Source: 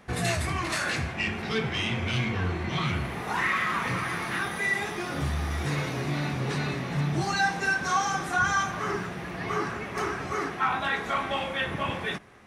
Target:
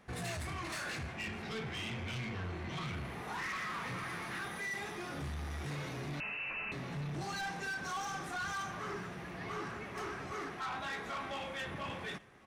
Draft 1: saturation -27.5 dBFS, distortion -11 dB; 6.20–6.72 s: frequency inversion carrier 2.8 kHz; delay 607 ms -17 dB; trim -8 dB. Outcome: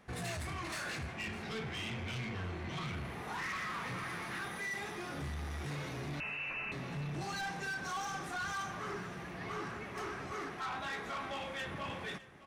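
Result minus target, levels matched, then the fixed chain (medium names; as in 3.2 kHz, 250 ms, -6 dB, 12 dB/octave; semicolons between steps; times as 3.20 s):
echo-to-direct +8 dB
saturation -27.5 dBFS, distortion -11 dB; 6.20–6.72 s: frequency inversion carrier 2.8 kHz; delay 607 ms -25 dB; trim -8 dB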